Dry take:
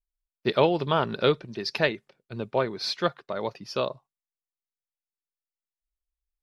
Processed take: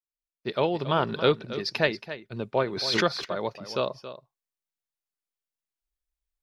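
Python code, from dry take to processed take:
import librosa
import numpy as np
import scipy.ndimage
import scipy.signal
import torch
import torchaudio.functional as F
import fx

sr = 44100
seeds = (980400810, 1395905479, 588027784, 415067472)

p1 = fx.fade_in_head(x, sr, length_s=1.02)
p2 = p1 + fx.echo_single(p1, sr, ms=276, db=-13.0, dry=0)
y = fx.pre_swell(p2, sr, db_per_s=39.0, at=(2.71, 3.24), fade=0.02)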